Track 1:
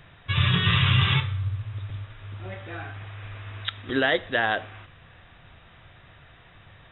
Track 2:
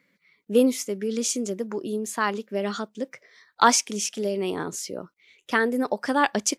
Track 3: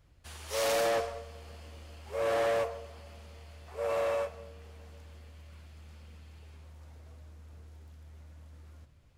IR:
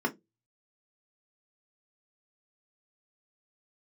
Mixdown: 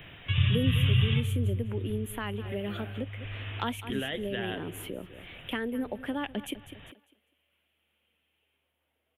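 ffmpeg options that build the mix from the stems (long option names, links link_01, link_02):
-filter_complex "[0:a]volume=0.5dB[link_01];[1:a]volume=1.5dB,asplit=2[link_02][link_03];[link_03]volume=-17dB[link_04];[2:a]highpass=frequency=780:poles=1,adelay=2000,volume=-16.5dB[link_05];[link_04]aecho=0:1:200|400|600|800:1|0.23|0.0529|0.0122[link_06];[link_01][link_02][link_05][link_06]amix=inputs=4:normalize=0,firequalizer=gain_entry='entry(120,0);entry(280,5);entry(1100,-3);entry(3100,11);entry(5000,-30);entry(11000,7)':delay=0.05:min_phase=1,acrossover=split=140[link_07][link_08];[link_08]acompressor=threshold=-40dB:ratio=2.5[link_09];[link_07][link_09]amix=inputs=2:normalize=0"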